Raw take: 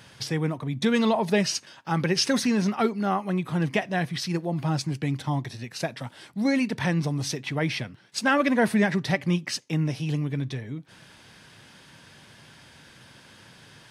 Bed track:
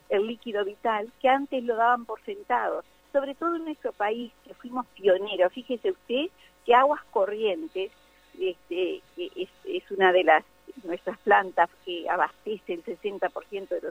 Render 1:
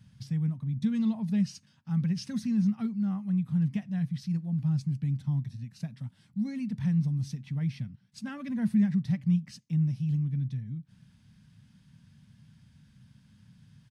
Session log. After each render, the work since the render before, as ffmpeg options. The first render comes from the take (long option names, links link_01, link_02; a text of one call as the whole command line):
ffmpeg -i in.wav -af "firequalizer=gain_entry='entry(210,0);entry(340,-27);entry(1100,-22);entry(4900,-18)':delay=0.05:min_phase=1" out.wav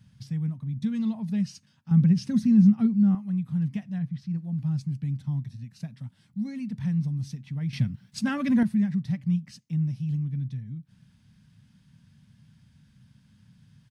ffmpeg -i in.wav -filter_complex "[0:a]asettb=1/sr,asplit=3[link_01][link_02][link_03];[link_01]atrim=end=1.914[link_04];[link_02]atrim=start=1.91:end=3.15,asetpts=PTS-STARTPTS,afade=type=in:duration=0.004:curve=qsin,afade=type=out:start_time=1.236:duration=0.004:curve=qsin,equalizer=frequency=200:width=0.37:gain=9[link_05];[link_03]atrim=start=3.146[link_06];[link_04][link_05]acrossfade=duration=0.004:curve1=hsin:curve2=qsin[link_07];[link_07][link_06]acrossfade=duration=0.004:curve1=qsin:curve2=hsin,asettb=1/sr,asplit=3[link_08][link_09][link_10];[link_08]atrim=end=3.984[link_11];[link_09]atrim=start=3.98:end=4.38,asetpts=PTS-STARTPTS,afade=type=in:duration=0.004:curve=qsin,afade=type=out:start_time=0.396:duration=0.004:curve=qsin,lowpass=frequency=1900:poles=1[link_12];[link_10]atrim=start=4.376[link_13];[link_11][link_12]acrossfade=duration=0.004:curve1=hsin:curve2=qsin[link_14];[link_14][link_13]acrossfade=duration=0.004:curve1=qsin:curve2=hsin,asplit=3[link_15][link_16][link_17];[link_15]atrim=end=7.732[link_18];[link_16]atrim=start=7.728:end=8.632,asetpts=PTS-STARTPTS,volume=11dB[link_19];[link_17]atrim=start=8.628[link_20];[link_18][link_19]acrossfade=duration=0.004:curve1=hsin:curve2=hsin[link_21];[link_21][link_20]acrossfade=duration=0.004:curve1=hsin:curve2=hsin" out.wav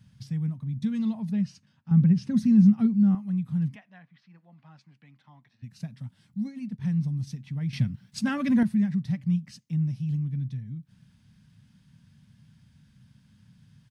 ffmpeg -i in.wav -filter_complex "[0:a]asettb=1/sr,asplit=3[link_01][link_02][link_03];[link_01]atrim=end=1.314[link_04];[link_02]atrim=start=1.31:end=2.37,asetpts=PTS-STARTPTS,afade=type=in:duration=0.004:curve=qsin,afade=type=out:start_time=1.056:duration=0.004:curve=qsin,highshelf=frequency=4500:gain=-12[link_05];[link_03]atrim=start=2.366[link_06];[link_04][link_05]acrossfade=duration=0.004:curve1=hsin:curve2=qsin[link_07];[link_07][link_06]acrossfade=duration=0.004:curve1=qsin:curve2=hsin,asplit=3[link_08][link_09][link_10];[link_08]afade=type=out:start_time=3.74:duration=0.02[link_11];[link_09]highpass=710,lowpass=2500,afade=type=in:start_time=3.74:duration=0.02,afade=type=out:start_time=5.62:duration=0.02[link_12];[link_10]afade=type=in:start_time=5.62:duration=0.02[link_13];[link_11][link_12][link_13]amix=inputs=3:normalize=0,asplit=3[link_14][link_15][link_16];[link_14]afade=type=out:start_time=6.47:duration=0.02[link_17];[link_15]agate=range=-33dB:threshold=-31dB:ratio=3:release=100:detection=peak,afade=type=in:start_time=6.47:duration=0.02,afade=type=out:start_time=7.26:duration=0.02[link_18];[link_16]afade=type=in:start_time=7.26:duration=0.02[link_19];[link_17][link_18][link_19]amix=inputs=3:normalize=0" out.wav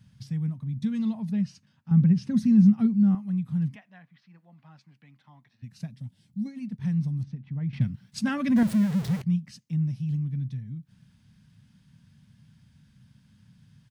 ffmpeg -i in.wav -filter_complex "[0:a]asettb=1/sr,asplit=3[link_01][link_02][link_03];[link_01]atrim=end=5.904[link_04];[link_02]atrim=start=5.9:end=6.46,asetpts=PTS-STARTPTS,afade=type=in:duration=0.004:curve=qsin,afade=type=out:start_time=0.556:duration=0.004:curve=qsin,equalizer=frequency=1300:width=1.1:gain=-13[link_05];[link_03]atrim=start=6.456[link_06];[link_04][link_05]acrossfade=duration=0.004:curve1=hsin:curve2=qsin[link_07];[link_07][link_06]acrossfade=duration=0.004:curve1=qsin:curve2=hsin,asettb=1/sr,asplit=3[link_08][link_09][link_10];[link_08]atrim=end=7.234[link_11];[link_09]atrim=start=7.23:end=7.81,asetpts=PTS-STARTPTS,afade=type=in:duration=0.004:curve=qsin,afade=type=out:start_time=0.576:duration=0.004:curve=qsin,adynamicsmooth=sensitivity=1.5:basefreq=1900[link_12];[link_10]atrim=start=7.806[link_13];[link_11][link_12]acrossfade=duration=0.004:curve1=hsin:curve2=qsin[link_14];[link_14][link_13]acrossfade=duration=0.004:curve1=qsin:curve2=hsin,asettb=1/sr,asplit=3[link_15][link_16][link_17];[link_15]atrim=end=8.564[link_18];[link_16]atrim=start=8.56:end=9.22,asetpts=PTS-STARTPTS,afade=type=in:duration=0.004:curve=qsin,afade=type=out:start_time=0.656:duration=0.004:curve=qsin,aeval=exprs='val(0)+0.5*0.0266*sgn(val(0))':channel_layout=same[link_19];[link_17]atrim=start=9.216[link_20];[link_18][link_19]acrossfade=duration=0.004:curve1=hsin:curve2=qsin[link_21];[link_21][link_20]acrossfade=duration=0.004:curve1=qsin:curve2=hsin" out.wav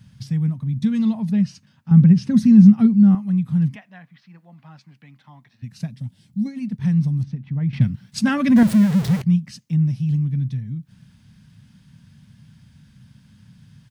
ffmpeg -i in.wav -af "volume=8dB" out.wav